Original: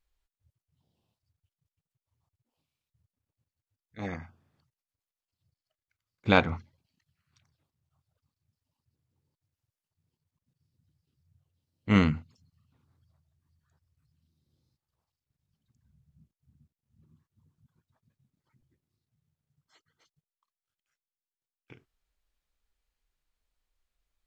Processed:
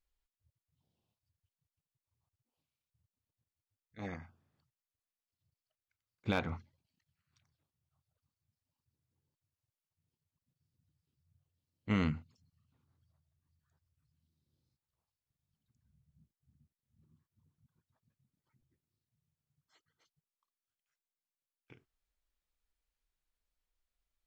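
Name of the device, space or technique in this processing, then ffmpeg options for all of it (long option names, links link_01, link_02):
clipper into limiter: -af "asoftclip=type=hard:threshold=-9dB,alimiter=limit=-15dB:level=0:latency=1:release=57,volume=-6.5dB"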